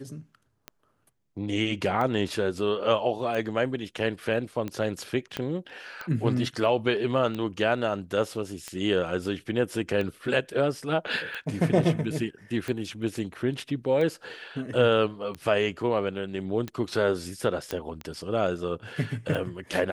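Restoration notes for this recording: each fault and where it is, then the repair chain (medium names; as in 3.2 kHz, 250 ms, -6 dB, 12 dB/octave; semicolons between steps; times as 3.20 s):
tick 45 rpm -20 dBFS
5.37 s: pop -16 dBFS
17.71 s: pop -15 dBFS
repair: de-click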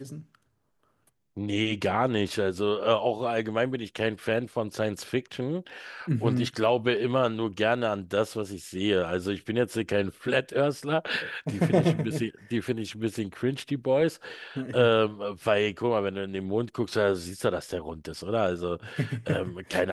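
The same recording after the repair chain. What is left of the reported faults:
5.37 s: pop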